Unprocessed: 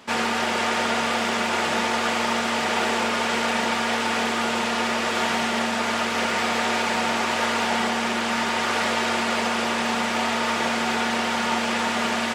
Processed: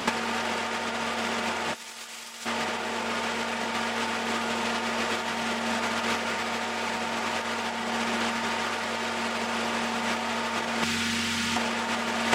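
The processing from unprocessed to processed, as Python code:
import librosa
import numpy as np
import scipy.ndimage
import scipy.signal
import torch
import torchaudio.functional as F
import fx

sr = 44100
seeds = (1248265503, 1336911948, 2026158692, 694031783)

y = fx.tone_stack(x, sr, knobs='6-0-2', at=(10.82, 11.56), fade=0.02)
y = fx.over_compress(y, sr, threshold_db=-31.0, ratio=-0.5)
y = fx.pre_emphasis(y, sr, coefficient=0.9, at=(1.73, 2.45), fade=0.02)
y = y * librosa.db_to_amplitude(5.5)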